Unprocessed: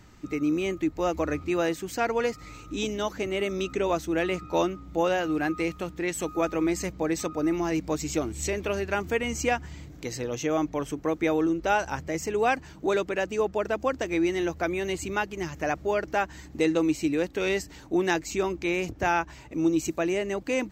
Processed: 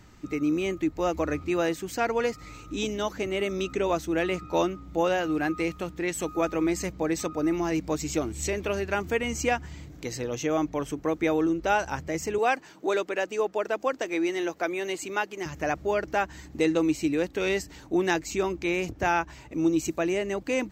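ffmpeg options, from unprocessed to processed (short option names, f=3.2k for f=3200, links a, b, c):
-filter_complex "[0:a]asettb=1/sr,asplit=3[a][b][c];[a]atrim=end=12.384[d];[b]atrim=start=12.38:end=15.46,asetpts=PTS-STARTPTS,afade=t=in:d=0.004:c=qsin,afade=t=out:st=3.076:d=0.004:c=qsin,highpass=300[e];[c]atrim=start=15.456[f];[d][e]acrossfade=d=0.004:c1=hsin:c2=qsin[g];[g][f]acrossfade=d=0.004:c1=qsin:c2=hsin"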